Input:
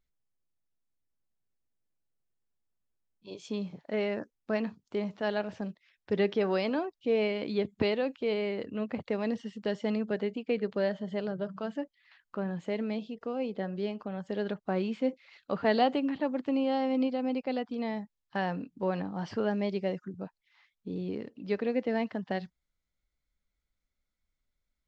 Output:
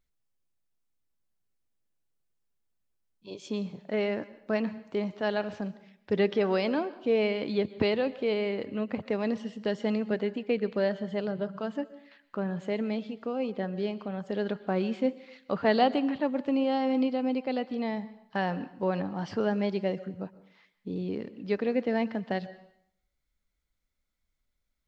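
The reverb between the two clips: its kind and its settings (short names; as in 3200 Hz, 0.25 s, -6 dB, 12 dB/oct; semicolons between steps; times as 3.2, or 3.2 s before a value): plate-style reverb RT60 0.71 s, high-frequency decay 0.95×, pre-delay 0.105 s, DRR 16.5 dB; gain +2 dB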